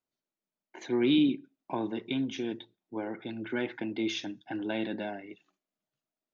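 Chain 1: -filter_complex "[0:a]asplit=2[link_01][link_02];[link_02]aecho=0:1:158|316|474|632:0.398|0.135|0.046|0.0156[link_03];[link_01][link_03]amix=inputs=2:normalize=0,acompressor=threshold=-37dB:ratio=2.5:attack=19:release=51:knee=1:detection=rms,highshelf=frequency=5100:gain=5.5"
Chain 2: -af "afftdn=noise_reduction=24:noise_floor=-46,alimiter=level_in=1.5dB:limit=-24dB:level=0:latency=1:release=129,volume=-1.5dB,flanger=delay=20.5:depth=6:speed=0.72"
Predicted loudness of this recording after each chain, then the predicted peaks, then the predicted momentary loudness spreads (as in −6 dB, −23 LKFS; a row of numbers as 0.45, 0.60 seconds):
−37.5, −40.0 LKFS; −21.5, −25.5 dBFS; 9, 10 LU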